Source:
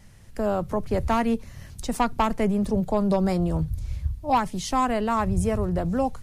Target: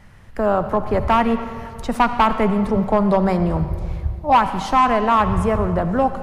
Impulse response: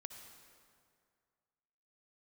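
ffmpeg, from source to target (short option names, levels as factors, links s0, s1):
-filter_complex "[0:a]equalizer=f=1200:t=o:w=1.8:g=7.5,volume=3.76,asoftclip=hard,volume=0.266,asplit=2[s0][s1];[1:a]atrim=start_sample=2205,lowpass=4200[s2];[s1][s2]afir=irnorm=-1:irlink=0,volume=2.37[s3];[s0][s3]amix=inputs=2:normalize=0,volume=0.668"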